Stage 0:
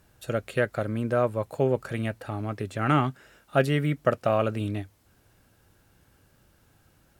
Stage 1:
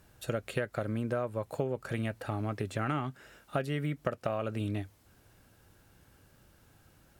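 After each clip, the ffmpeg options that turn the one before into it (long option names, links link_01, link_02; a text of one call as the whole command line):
ffmpeg -i in.wav -af "acompressor=threshold=-28dB:ratio=12" out.wav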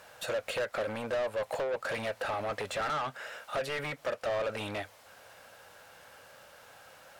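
ffmpeg -i in.wav -filter_complex "[0:a]asoftclip=type=hard:threshold=-27dB,lowshelf=frequency=430:width_type=q:width=3:gain=-6,asplit=2[link_01][link_02];[link_02]highpass=frequency=720:poles=1,volume=25dB,asoftclip=type=tanh:threshold=-19.5dB[link_03];[link_01][link_03]amix=inputs=2:normalize=0,lowpass=frequency=4100:poles=1,volume=-6dB,volume=-5dB" out.wav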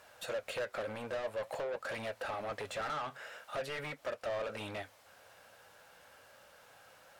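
ffmpeg -i in.wav -af "flanger=delay=2.9:depth=8.2:regen=-70:speed=0.48:shape=sinusoidal,volume=-1dB" out.wav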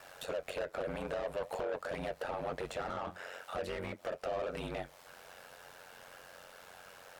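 ffmpeg -i in.wav -filter_complex "[0:a]acrossover=split=810[link_01][link_02];[link_01]asoftclip=type=tanh:threshold=-39.5dB[link_03];[link_02]acompressor=threshold=-51dB:ratio=6[link_04];[link_03][link_04]amix=inputs=2:normalize=0,aeval=exprs='val(0)*sin(2*PI*45*n/s)':channel_layout=same,volume=8.5dB" out.wav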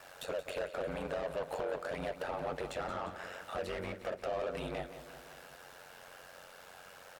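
ffmpeg -i in.wav -af "aecho=1:1:176|352|528|704|880|1056|1232:0.251|0.151|0.0904|0.0543|0.0326|0.0195|0.0117" out.wav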